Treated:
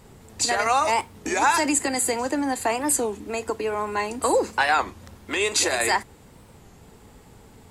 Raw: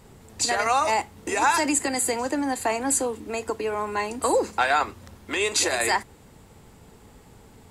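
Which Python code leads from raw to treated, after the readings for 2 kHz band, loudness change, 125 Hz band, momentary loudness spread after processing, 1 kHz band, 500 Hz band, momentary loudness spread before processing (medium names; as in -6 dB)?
+1.0 dB, +1.0 dB, +1.0 dB, 7 LU, +1.0 dB, +1.0 dB, 7 LU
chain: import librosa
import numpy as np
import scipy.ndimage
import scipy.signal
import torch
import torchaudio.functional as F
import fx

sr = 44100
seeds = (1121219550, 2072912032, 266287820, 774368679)

y = fx.record_warp(x, sr, rpm=33.33, depth_cents=160.0)
y = y * 10.0 ** (1.0 / 20.0)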